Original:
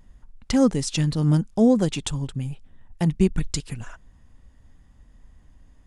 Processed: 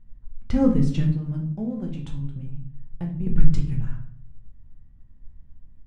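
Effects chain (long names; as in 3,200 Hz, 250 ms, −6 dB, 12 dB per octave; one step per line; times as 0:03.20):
mu-law and A-law mismatch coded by A
bass and treble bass +13 dB, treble −15 dB
mains-hum notches 50/100/150 Hz
0:01.10–0:03.27: downward compressor 3 to 1, threshold −27 dBFS, peak gain reduction 15.5 dB
rectangular room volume 71 cubic metres, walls mixed, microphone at 0.71 metres
level −8 dB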